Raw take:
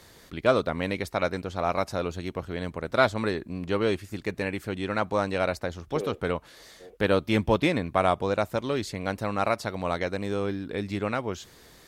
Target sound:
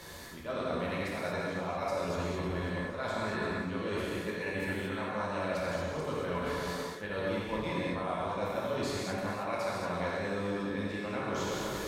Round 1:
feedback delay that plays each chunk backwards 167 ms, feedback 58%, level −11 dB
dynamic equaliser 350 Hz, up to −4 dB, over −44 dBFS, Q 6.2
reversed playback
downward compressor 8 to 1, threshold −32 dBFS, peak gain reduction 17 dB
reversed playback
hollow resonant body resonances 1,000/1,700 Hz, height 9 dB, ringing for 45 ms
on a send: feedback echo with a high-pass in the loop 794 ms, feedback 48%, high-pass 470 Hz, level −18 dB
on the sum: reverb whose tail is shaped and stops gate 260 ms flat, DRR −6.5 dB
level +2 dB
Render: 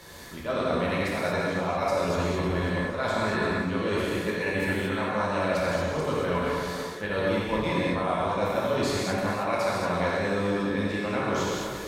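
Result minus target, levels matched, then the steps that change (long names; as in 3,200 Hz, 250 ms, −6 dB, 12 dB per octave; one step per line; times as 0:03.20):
downward compressor: peak gain reduction −7.5 dB
change: downward compressor 8 to 1, threshold −40.5 dBFS, peak gain reduction 24.5 dB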